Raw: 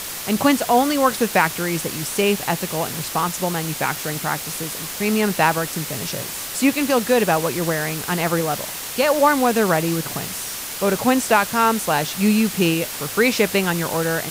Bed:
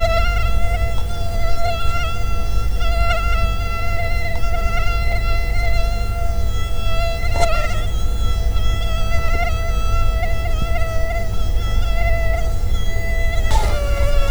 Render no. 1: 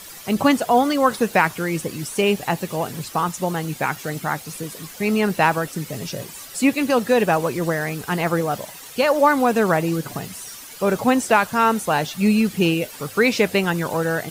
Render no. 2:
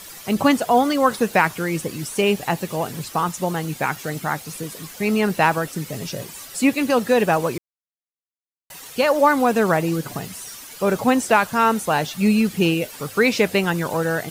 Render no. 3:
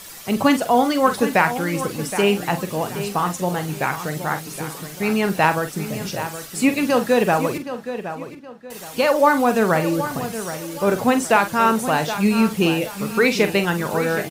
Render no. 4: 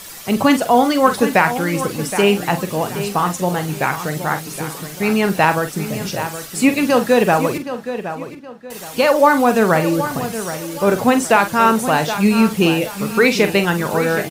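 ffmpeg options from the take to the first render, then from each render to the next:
ffmpeg -i in.wav -af "afftdn=noise_reduction=12:noise_floor=-30" out.wav
ffmpeg -i in.wav -filter_complex "[0:a]asplit=3[link_01][link_02][link_03];[link_01]atrim=end=7.58,asetpts=PTS-STARTPTS,afade=type=out:start_time=7.576:duration=0.004:curve=hsin[link_04];[link_02]atrim=start=7.58:end=8.7,asetpts=PTS-STARTPTS,volume=0[link_05];[link_03]atrim=start=8.7,asetpts=PTS-STARTPTS,afade=type=in:duration=0.004:curve=hsin[link_06];[link_04][link_05][link_06]concat=n=3:v=0:a=1" out.wav
ffmpeg -i in.wav -filter_complex "[0:a]asplit=2[link_01][link_02];[link_02]adelay=45,volume=-10dB[link_03];[link_01][link_03]amix=inputs=2:normalize=0,asplit=2[link_04][link_05];[link_05]adelay=770,lowpass=frequency=4100:poles=1,volume=-11dB,asplit=2[link_06][link_07];[link_07]adelay=770,lowpass=frequency=4100:poles=1,volume=0.33,asplit=2[link_08][link_09];[link_09]adelay=770,lowpass=frequency=4100:poles=1,volume=0.33,asplit=2[link_10][link_11];[link_11]adelay=770,lowpass=frequency=4100:poles=1,volume=0.33[link_12];[link_06][link_08][link_10][link_12]amix=inputs=4:normalize=0[link_13];[link_04][link_13]amix=inputs=2:normalize=0" out.wav
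ffmpeg -i in.wav -af "volume=3.5dB,alimiter=limit=-1dB:level=0:latency=1" out.wav

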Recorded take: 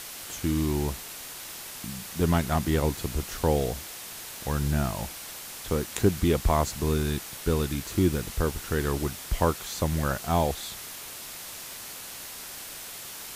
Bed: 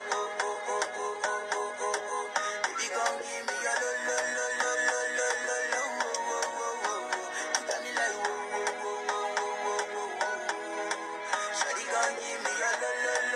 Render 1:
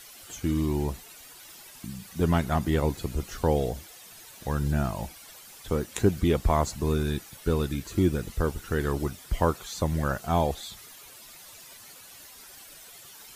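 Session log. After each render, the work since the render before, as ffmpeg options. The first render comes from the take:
ffmpeg -i in.wav -af "afftdn=noise_reduction=12:noise_floor=-41" out.wav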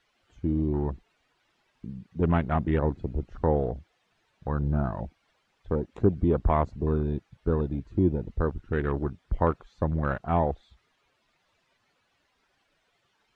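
ffmpeg -i in.wav -af "lowpass=2800,afwtdn=0.0158" out.wav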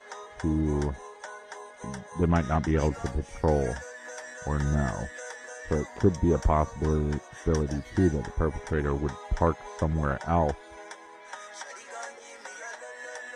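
ffmpeg -i in.wav -i bed.wav -filter_complex "[1:a]volume=-11dB[link_01];[0:a][link_01]amix=inputs=2:normalize=0" out.wav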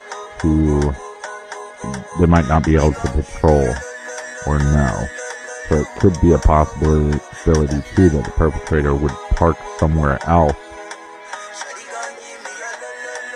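ffmpeg -i in.wav -af "volume=11.5dB,alimiter=limit=-1dB:level=0:latency=1" out.wav

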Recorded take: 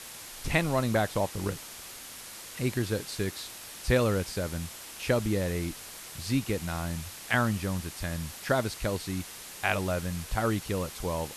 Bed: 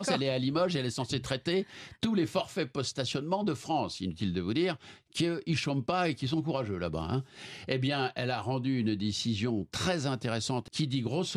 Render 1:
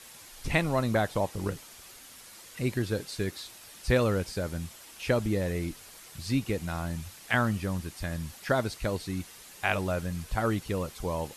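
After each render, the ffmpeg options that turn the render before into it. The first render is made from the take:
ffmpeg -i in.wav -af "afftdn=noise_reduction=7:noise_floor=-44" out.wav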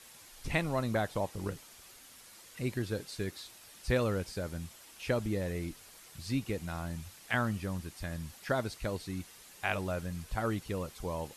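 ffmpeg -i in.wav -af "volume=-5dB" out.wav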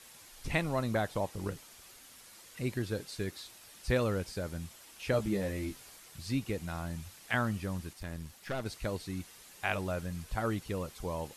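ffmpeg -i in.wav -filter_complex "[0:a]asettb=1/sr,asplit=3[link_01][link_02][link_03];[link_01]atrim=end=5.124[link_04];[link_02]atrim=start=5.12:end=5.96,asetpts=PTS-STARTPTS,afade=type=in:duration=0.004:curve=qsin,afade=type=out:start_time=0.836:duration=0.004:curve=qsin,asplit=2[link_05][link_06];[link_06]adelay=15,volume=-3.5dB[link_07];[link_05][link_07]amix=inputs=2:normalize=0,atrim=end_sample=37044[link_08];[link_03]atrim=start=5.956[link_09];[link_04][link_08]acrossfade=duration=0.004:curve1=hsin:curve2=qsin[link_10];[link_10][link_09]acrossfade=duration=0.004:curve1=qsin:curve2=hsin,asettb=1/sr,asplit=3[link_11][link_12][link_13];[link_11]atrim=end=7.934[link_14];[link_12]atrim=start=7.93:end=8.66,asetpts=PTS-STARTPTS,afade=type=in:duration=0.004:curve=qsin,afade=type=out:start_time=0.726:duration=0.004:curve=qsin,aeval=exprs='(tanh(35.5*val(0)+0.65)-tanh(0.65))/35.5':channel_layout=same[link_15];[link_13]atrim=start=8.656[link_16];[link_14][link_15]acrossfade=duration=0.004:curve1=hsin:curve2=qsin[link_17];[link_17][link_16]acrossfade=duration=0.004:curve1=qsin:curve2=hsin" out.wav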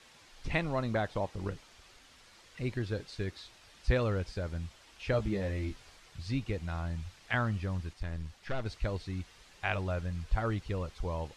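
ffmpeg -i in.wav -af "asubboost=boost=3:cutoff=100,lowpass=4900" out.wav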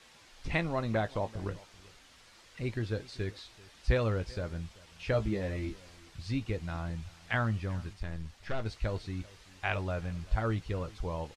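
ffmpeg -i in.wav -filter_complex "[0:a]asplit=2[link_01][link_02];[link_02]adelay=18,volume=-12dB[link_03];[link_01][link_03]amix=inputs=2:normalize=0,aecho=1:1:386:0.0794" out.wav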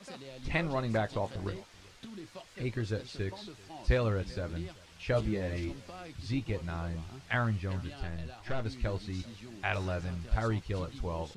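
ffmpeg -i in.wav -i bed.wav -filter_complex "[1:a]volume=-17.5dB[link_01];[0:a][link_01]amix=inputs=2:normalize=0" out.wav

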